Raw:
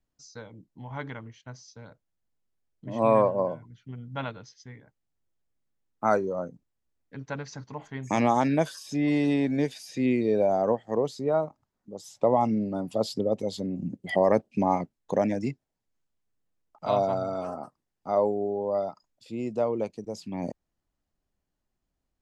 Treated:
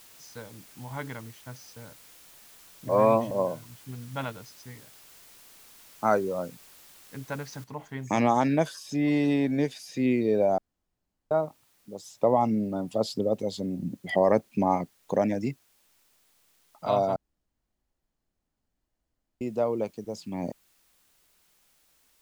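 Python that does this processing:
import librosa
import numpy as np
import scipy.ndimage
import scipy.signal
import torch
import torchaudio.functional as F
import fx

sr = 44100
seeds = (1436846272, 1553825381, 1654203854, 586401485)

y = fx.noise_floor_step(x, sr, seeds[0], at_s=7.64, before_db=-53, after_db=-66, tilt_db=0.0)
y = fx.edit(y, sr, fx.reverse_span(start_s=2.89, length_s=0.42),
    fx.room_tone_fill(start_s=10.58, length_s=0.73),
    fx.room_tone_fill(start_s=17.16, length_s=2.25), tone=tone)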